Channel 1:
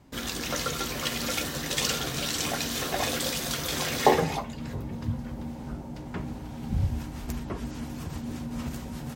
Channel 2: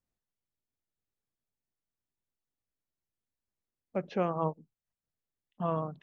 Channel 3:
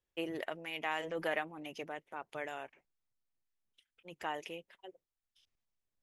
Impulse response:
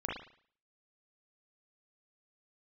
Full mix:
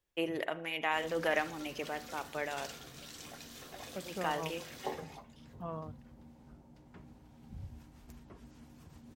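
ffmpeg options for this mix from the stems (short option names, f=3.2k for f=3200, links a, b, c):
-filter_complex "[0:a]adelay=800,volume=-19.5dB[a];[1:a]volume=-10dB[b];[2:a]volume=2.5dB,asplit=2[c][d];[d]volume=-14.5dB[e];[3:a]atrim=start_sample=2205[f];[e][f]afir=irnorm=-1:irlink=0[g];[a][b][c][g]amix=inputs=4:normalize=0"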